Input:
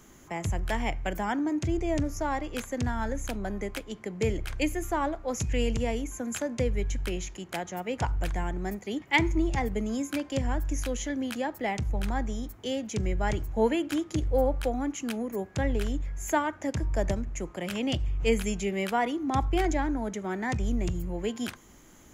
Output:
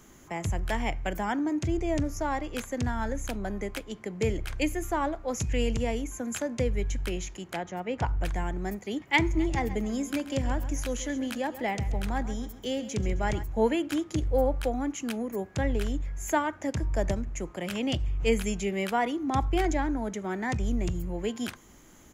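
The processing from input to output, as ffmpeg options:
ffmpeg -i in.wav -filter_complex "[0:a]asettb=1/sr,asplit=3[link_01][link_02][link_03];[link_01]atrim=end=7.544[link_04];[link_02]atrim=start=7.54:end=8.25,asetpts=PTS-STARTPTS,afade=type=in:duration=0.004:curve=qsin,afade=type=out:start_time=0.706:duration=0.004:curve=qsin,aemphasis=mode=reproduction:type=50fm[link_05];[link_03]atrim=start=8.246[link_06];[link_04][link_05]acrossfade=duration=0.004:curve1=hsin:curve2=qsin[link_07];[link_07][link_06]acrossfade=duration=0.004:curve1=qsin:curve2=hsin,asplit=3[link_08][link_09][link_10];[link_08]afade=type=out:start_time=9.33:duration=0.02[link_11];[link_09]aecho=1:1:133|266|399|532:0.2|0.0798|0.0319|0.0128,afade=type=in:start_time=9.33:duration=0.02,afade=type=out:start_time=13.42:duration=0.02[link_12];[link_10]afade=type=in:start_time=13.42:duration=0.02[link_13];[link_11][link_12][link_13]amix=inputs=3:normalize=0" out.wav

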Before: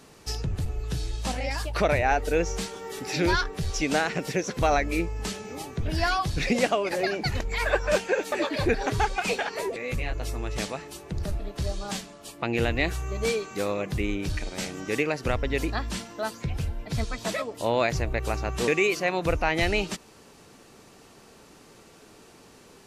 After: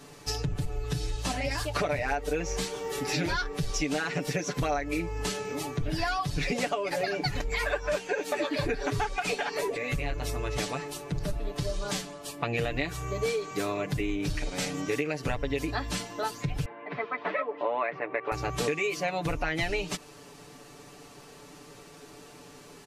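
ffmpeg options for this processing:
ffmpeg -i in.wav -filter_complex "[0:a]asplit=2[link_01][link_02];[link_02]afade=type=in:start_time=0.94:duration=0.01,afade=type=out:start_time=1.65:duration=0.01,aecho=0:1:500|1000|1500|2000|2500:0.334965|0.150734|0.0678305|0.0305237|0.0137357[link_03];[link_01][link_03]amix=inputs=2:normalize=0,asettb=1/sr,asplit=3[link_04][link_05][link_06];[link_04]atrim=end=16.654[link_07];[link_05]atrim=start=16.65:end=18.32,asetpts=PTS-STARTPTS,afade=type=in:duration=0.004:curve=qsin,afade=type=out:start_time=1.666:duration=0.004:curve=qsin,highpass=frequency=240:width=0.5412,highpass=frequency=240:width=1.3066,equalizer=frequency=260:width_type=q:width=4:gain=-6,equalizer=frequency=1100:width_type=q:width=4:gain=6,equalizer=frequency=2000:width_type=q:width=4:gain=4,lowpass=frequency=2400:width=0.5412,lowpass=frequency=2400:width=1.3066[link_08];[link_06]atrim=start=18.316[link_09];[link_07][link_08]acrossfade=duration=0.004:curve1=hsin:curve2=qsin[link_10];[link_10][link_09]acrossfade=duration=0.004:curve1=qsin:curve2=hsin,aecho=1:1:6.9:0.88,acompressor=threshold=-26dB:ratio=6" out.wav

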